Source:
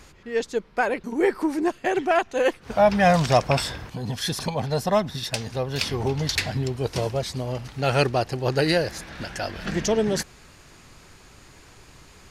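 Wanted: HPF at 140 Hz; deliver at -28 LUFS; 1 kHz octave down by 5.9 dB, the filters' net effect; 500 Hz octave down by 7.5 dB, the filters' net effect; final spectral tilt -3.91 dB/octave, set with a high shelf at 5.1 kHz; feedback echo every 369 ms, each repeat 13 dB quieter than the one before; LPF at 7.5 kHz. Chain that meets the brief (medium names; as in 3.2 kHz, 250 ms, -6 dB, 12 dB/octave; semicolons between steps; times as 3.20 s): high-pass 140 Hz; low-pass 7.5 kHz; peaking EQ 500 Hz -8.5 dB; peaking EQ 1 kHz -4.5 dB; treble shelf 5.1 kHz +6 dB; feedback delay 369 ms, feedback 22%, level -13 dB; trim -0.5 dB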